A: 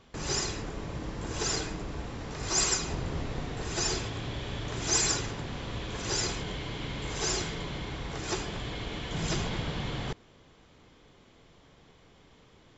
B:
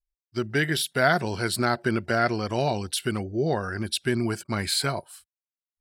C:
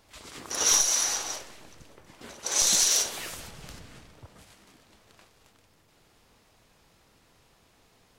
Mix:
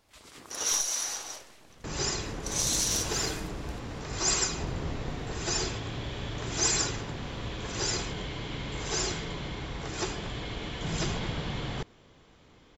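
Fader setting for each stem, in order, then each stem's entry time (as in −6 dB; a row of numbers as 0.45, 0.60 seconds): 0.0 dB, muted, −6.0 dB; 1.70 s, muted, 0.00 s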